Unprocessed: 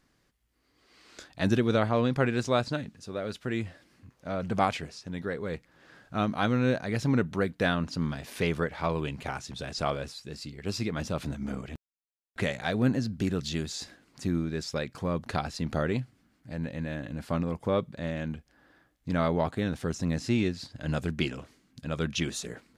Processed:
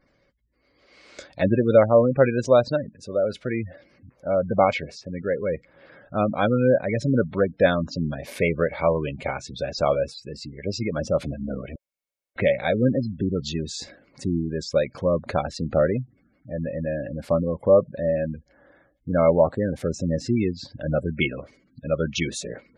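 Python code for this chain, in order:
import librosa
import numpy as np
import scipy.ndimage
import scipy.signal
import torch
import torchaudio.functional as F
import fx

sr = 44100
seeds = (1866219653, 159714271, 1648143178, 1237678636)

y = fx.spec_gate(x, sr, threshold_db=-20, keep='strong')
y = fx.small_body(y, sr, hz=(560.0, 2200.0), ring_ms=35, db=13)
y = F.gain(torch.from_numpy(y), 3.5).numpy()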